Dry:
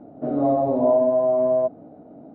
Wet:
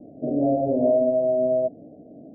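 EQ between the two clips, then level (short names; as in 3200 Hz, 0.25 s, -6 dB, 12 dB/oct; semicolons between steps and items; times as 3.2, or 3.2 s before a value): steep low-pass 660 Hz 48 dB/oct; 0.0 dB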